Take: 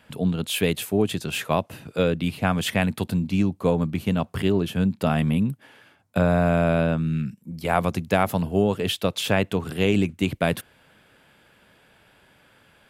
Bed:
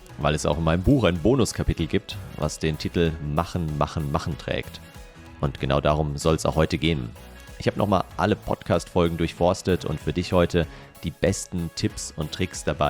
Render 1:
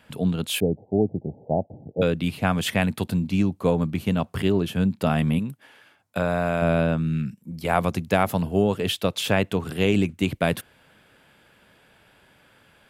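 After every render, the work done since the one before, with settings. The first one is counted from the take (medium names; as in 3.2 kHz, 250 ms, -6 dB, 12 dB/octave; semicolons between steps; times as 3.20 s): 0.60–2.02 s: steep low-pass 830 Hz 96 dB/octave; 5.39–6.62 s: bass shelf 380 Hz -8 dB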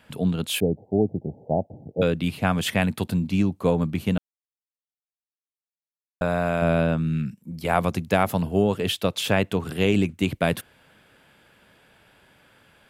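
4.18–6.21 s: mute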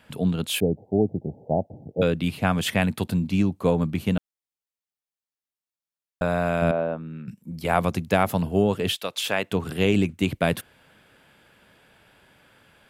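6.71–7.28 s: band-pass filter 650 Hz, Q 1.1; 8.95–9.50 s: high-pass 1.2 kHz -> 530 Hz 6 dB/octave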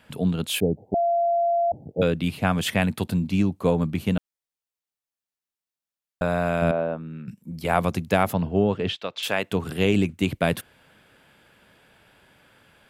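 0.94–1.72 s: bleep 686 Hz -18.5 dBFS; 8.33–9.23 s: distance through air 160 m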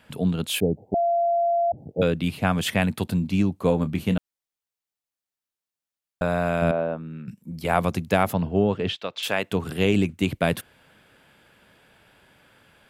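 1.37–1.78 s: resonances exaggerated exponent 1.5; 3.67–4.14 s: doubling 27 ms -12 dB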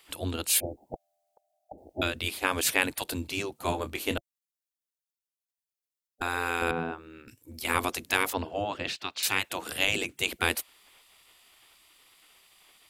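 spectral gate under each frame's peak -10 dB weak; treble shelf 3.5 kHz +9 dB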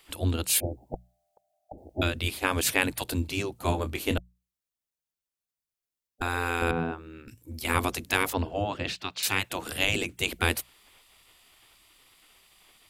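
bass shelf 200 Hz +10 dB; hum notches 60/120/180 Hz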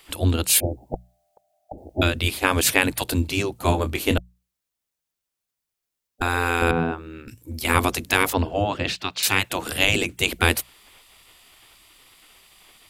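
trim +6.5 dB; peak limiter -1 dBFS, peak gain reduction 2 dB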